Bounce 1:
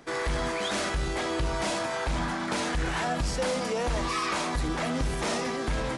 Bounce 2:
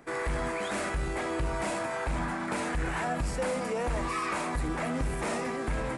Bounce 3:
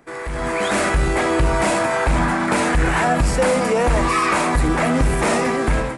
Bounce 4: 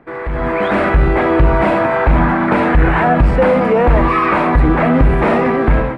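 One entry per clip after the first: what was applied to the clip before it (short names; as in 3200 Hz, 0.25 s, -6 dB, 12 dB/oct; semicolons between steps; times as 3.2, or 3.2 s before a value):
band shelf 4400 Hz -8 dB 1.3 oct; gain -2 dB
AGC gain up to 12 dB; gain +1.5 dB
air absorption 490 m; gain +7 dB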